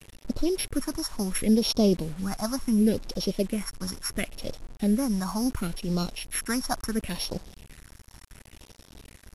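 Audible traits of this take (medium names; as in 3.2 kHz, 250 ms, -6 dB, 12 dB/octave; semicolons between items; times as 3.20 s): a buzz of ramps at a fixed pitch in blocks of 8 samples; phasing stages 4, 0.71 Hz, lowest notch 450–1800 Hz; a quantiser's noise floor 8-bit, dither none; MP2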